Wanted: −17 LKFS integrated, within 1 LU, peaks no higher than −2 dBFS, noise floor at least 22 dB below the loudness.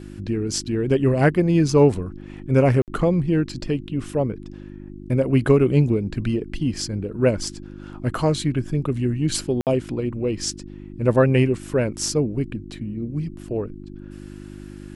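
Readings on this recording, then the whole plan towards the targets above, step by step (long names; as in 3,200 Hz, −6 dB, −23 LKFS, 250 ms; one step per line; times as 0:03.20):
number of dropouts 2; longest dropout 58 ms; mains hum 50 Hz; hum harmonics up to 350 Hz; level of the hum −37 dBFS; integrated loudness −22.0 LKFS; sample peak −4.5 dBFS; target loudness −17.0 LKFS
→ repair the gap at 0:02.82/0:09.61, 58 ms
hum removal 50 Hz, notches 7
level +5 dB
brickwall limiter −2 dBFS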